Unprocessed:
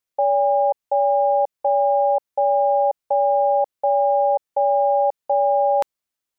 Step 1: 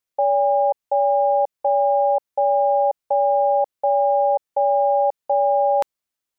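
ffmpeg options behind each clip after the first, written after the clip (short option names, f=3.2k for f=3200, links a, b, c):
-af anull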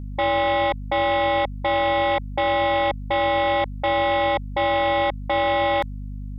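-af "acontrast=28,aeval=exprs='val(0)+0.0282*(sin(2*PI*50*n/s)+sin(2*PI*2*50*n/s)/2+sin(2*PI*3*50*n/s)/3+sin(2*PI*4*50*n/s)/4+sin(2*PI*5*50*n/s)/5)':c=same,aeval=exprs='0.501*(cos(1*acos(clip(val(0)/0.501,-1,1)))-cos(1*PI/2))+0.178*(cos(5*acos(clip(val(0)/0.501,-1,1)))-cos(5*PI/2))':c=same,volume=-8.5dB"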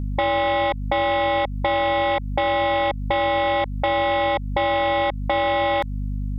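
-af "acompressor=threshold=-26dB:ratio=6,volume=6.5dB"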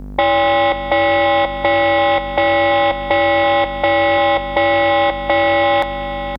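-filter_complex "[0:a]acrossover=split=260|1900[a][b][c];[a]asoftclip=type=tanh:threshold=-37dB[d];[d][b][c]amix=inputs=3:normalize=0,aecho=1:1:532:0.316,volume=7dB"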